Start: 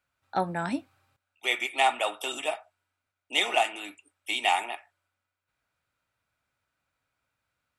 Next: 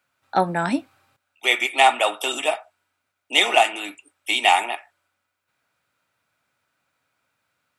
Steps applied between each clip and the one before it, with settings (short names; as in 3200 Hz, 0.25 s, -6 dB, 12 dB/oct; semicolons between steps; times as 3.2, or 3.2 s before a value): HPF 140 Hz 12 dB/oct; gain +8 dB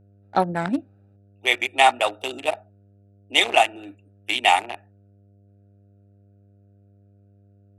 Wiener smoothing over 41 samples; buzz 100 Hz, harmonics 7, -55 dBFS -8 dB/oct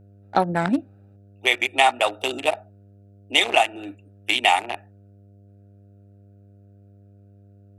compressor 2:1, threshold -22 dBFS, peak gain reduction 7 dB; gain +4.5 dB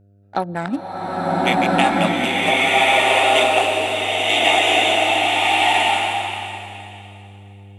bloom reverb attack 1.38 s, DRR -9 dB; gain -2.5 dB